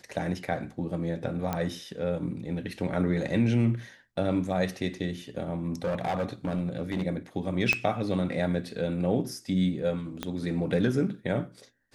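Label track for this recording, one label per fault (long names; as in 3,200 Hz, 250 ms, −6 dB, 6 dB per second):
1.530000	1.530000	click −15 dBFS
5.660000	7.030000	clipping −24.5 dBFS
7.730000	7.730000	click −11 dBFS
10.230000	10.230000	click −16 dBFS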